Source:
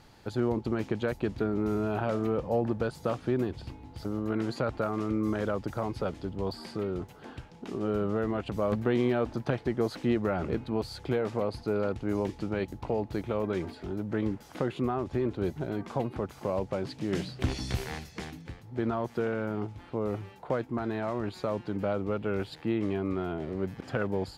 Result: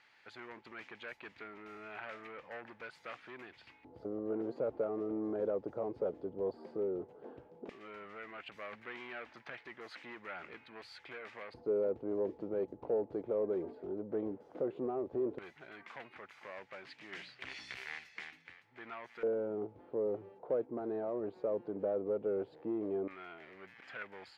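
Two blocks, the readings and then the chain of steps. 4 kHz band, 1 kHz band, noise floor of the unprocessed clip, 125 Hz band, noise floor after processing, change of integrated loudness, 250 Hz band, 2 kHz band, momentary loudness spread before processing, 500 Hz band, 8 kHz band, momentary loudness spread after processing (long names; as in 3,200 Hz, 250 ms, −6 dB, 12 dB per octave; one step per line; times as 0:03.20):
−10.5 dB, −11.5 dB, −51 dBFS, −22.0 dB, −63 dBFS, −8.0 dB, −12.0 dB, −6.0 dB, 6 LU, −6.0 dB, can't be measured, 15 LU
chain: soft clipping −24.5 dBFS, distortion −14 dB
auto-filter band-pass square 0.13 Hz 470–2,100 Hz
level +2 dB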